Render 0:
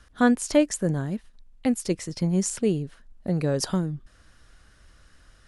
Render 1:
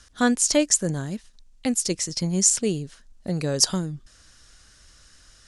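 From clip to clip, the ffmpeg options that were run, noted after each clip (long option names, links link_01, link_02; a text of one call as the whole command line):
ffmpeg -i in.wav -af "equalizer=frequency=6400:width_type=o:width=1.8:gain=14.5,volume=-1.5dB" out.wav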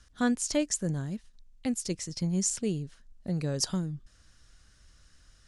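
ffmpeg -i in.wav -af "bass=frequency=250:gain=6,treble=frequency=4000:gain=-3,volume=-8.5dB" out.wav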